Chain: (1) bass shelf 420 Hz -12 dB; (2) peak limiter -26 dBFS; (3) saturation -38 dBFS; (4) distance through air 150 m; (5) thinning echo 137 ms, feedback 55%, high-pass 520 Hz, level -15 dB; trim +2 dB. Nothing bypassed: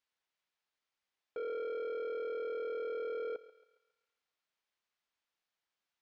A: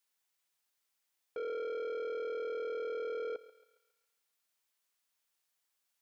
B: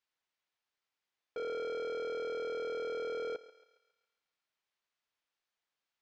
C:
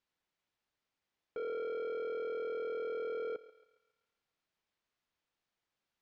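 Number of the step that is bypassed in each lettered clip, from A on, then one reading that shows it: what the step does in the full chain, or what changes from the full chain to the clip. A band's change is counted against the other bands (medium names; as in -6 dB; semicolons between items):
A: 4, 4 kHz band +2.5 dB; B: 2, mean gain reduction 8.5 dB; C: 1, 250 Hz band +2.0 dB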